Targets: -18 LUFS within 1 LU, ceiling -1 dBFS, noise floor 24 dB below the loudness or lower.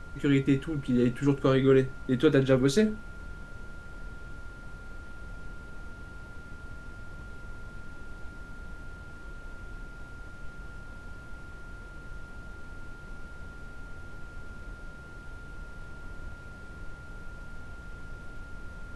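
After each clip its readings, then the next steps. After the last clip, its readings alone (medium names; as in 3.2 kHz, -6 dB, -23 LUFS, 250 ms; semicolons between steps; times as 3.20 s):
steady tone 1.4 kHz; tone level -48 dBFS; noise floor -46 dBFS; noise floor target -50 dBFS; loudness -25.5 LUFS; peak level -10.5 dBFS; loudness target -18.0 LUFS
-> band-stop 1.4 kHz, Q 30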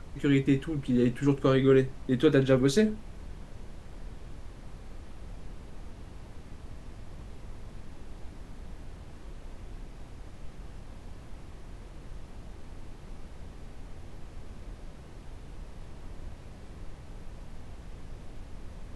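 steady tone not found; noise floor -47 dBFS; noise floor target -50 dBFS
-> noise print and reduce 6 dB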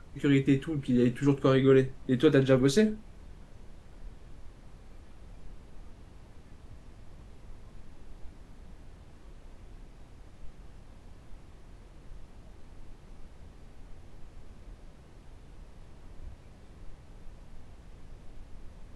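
noise floor -53 dBFS; loudness -25.5 LUFS; peak level -10.0 dBFS; loudness target -18.0 LUFS
-> trim +7.5 dB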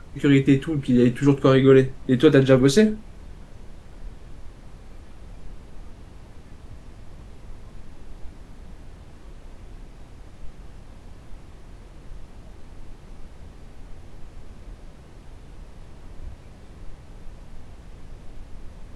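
loudness -18.0 LUFS; peak level -2.5 dBFS; noise floor -45 dBFS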